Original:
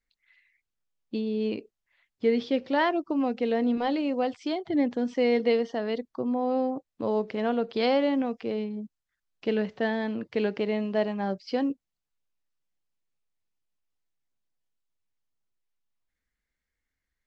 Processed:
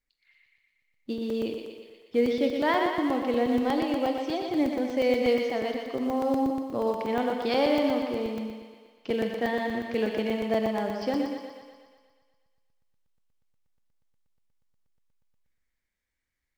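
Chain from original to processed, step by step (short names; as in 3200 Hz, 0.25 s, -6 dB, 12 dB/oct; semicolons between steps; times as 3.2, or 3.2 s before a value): in parallel at -12 dB: short-mantissa float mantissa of 2-bit; on the sum: thinning echo 0.125 s, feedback 64%, high-pass 300 Hz, level -4.5 dB; Schroeder reverb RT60 1.3 s, combs from 31 ms, DRR 8.5 dB; speed mistake 24 fps film run at 25 fps; crackling interface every 0.12 s, samples 128, zero, from 0.34; gain -3 dB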